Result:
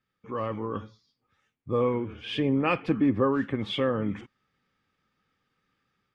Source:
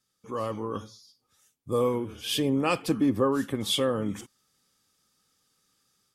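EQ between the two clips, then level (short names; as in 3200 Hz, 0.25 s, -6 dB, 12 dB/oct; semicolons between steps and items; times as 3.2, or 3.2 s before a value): synth low-pass 2200 Hz, resonance Q 1.9; low shelf 320 Hz +4.5 dB; -2.0 dB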